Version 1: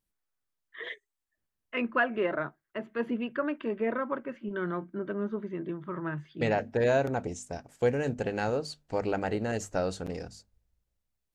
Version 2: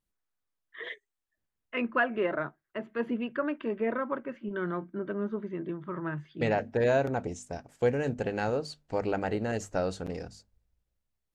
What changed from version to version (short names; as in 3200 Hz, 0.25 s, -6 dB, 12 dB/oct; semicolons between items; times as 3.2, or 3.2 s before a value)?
master: add high shelf 5600 Hz -4.5 dB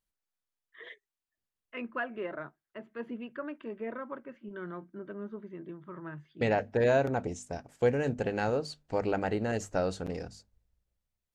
first voice -8.0 dB